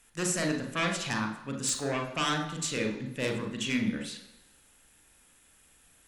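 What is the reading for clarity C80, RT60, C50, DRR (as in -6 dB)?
10.5 dB, 0.95 s, 7.0 dB, 3.5 dB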